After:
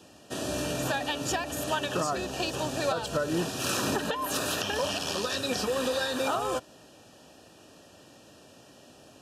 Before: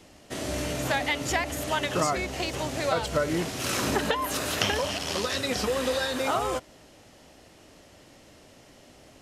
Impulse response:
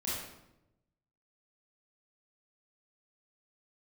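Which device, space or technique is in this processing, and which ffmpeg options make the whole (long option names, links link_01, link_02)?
PA system with an anti-feedback notch: -af "highpass=100,asuperstop=centerf=2100:order=20:qfactor=5,alimiter=limit=-17.5dB:level=0:latency=1:release=221"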